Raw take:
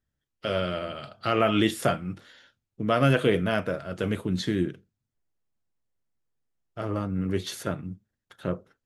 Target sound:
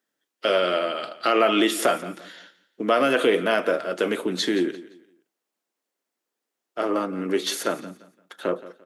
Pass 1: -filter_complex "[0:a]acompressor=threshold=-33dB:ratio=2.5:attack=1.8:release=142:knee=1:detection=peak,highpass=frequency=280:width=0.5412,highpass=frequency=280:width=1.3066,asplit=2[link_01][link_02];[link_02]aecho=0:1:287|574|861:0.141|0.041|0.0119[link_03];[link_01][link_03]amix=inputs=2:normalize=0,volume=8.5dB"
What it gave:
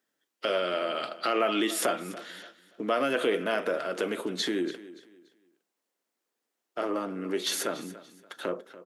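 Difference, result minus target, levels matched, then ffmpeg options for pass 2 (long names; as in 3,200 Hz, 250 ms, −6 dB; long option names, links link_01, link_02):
echo 115 ms late; downward compressor: peak gain reduction +7 dB
-filter_complex "[0:a]acompressor=threshold=-21.5dB:ratio=2.5:attack=1.8:release=142:knee=1:detection=peak,highpass=frequency=280:width=0.5412,highpass=frequency=280:width=1.3066,asplit=2[link_01][link_02];[link_02]aecho=0:1:172|344|516:0.141|0.041|0.0119[link_03];[link_01][link_03]amix=inputs=2:normalize=0,volume=8.5dB"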